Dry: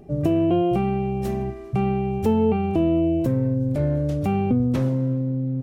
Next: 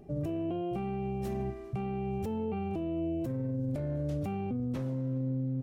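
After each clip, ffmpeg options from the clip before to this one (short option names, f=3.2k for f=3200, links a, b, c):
-af "alimiter=limit=-20.5dB:level=0:latency=1:release=27,volume=-6.5dB"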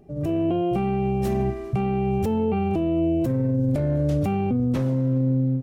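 -af "dynaudnorm=f=150:g=3:m=11dB"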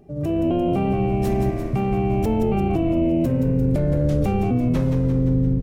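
-filter_complex "[0:a]asplit=9[a][b][c][d][e][f][g][h][i];[b]adelay=173,afreqshift=-81,volume=-7dB[j];[c]adelay=346,afreqshift=-162,volume=-11.3dB[k];[d]adelay=519,afreqshift=-243,volume=-15.6dB[l];[e]adelay=692,afreqshift=-324,volume=-19.9dB[m];[f]adelay=865,afreqshift=-405,volume=-24.2dB[n];[g]adelay=1038,afreqshift=-486,volume=-28.5dB[o];[h]adelay=1211,afreqshift=-567,volume=-32.8dB[p];[i]adelay=1384,afreqshift=-648,volume=-37.1dB[q];[a][j][k][l][m][n][o][p][q]amix=inputs=9:normalize=0,volume=1.5dB"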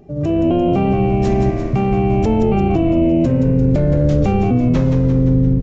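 -af "aresample=16000,aresample=44100,volume=5.5dB"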